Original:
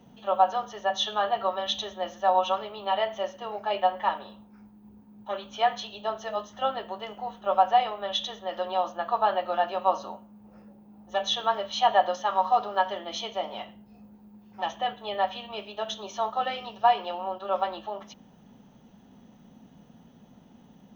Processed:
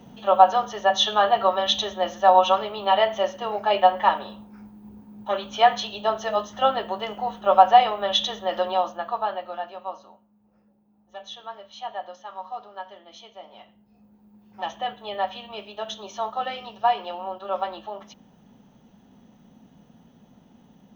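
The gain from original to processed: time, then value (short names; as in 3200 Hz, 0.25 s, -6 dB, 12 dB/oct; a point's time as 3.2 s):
8.57 s +7 dB
9.11 s -1 dB
10.1 s -12 dB
13.37 s -12 dB
14.61 s 0 dB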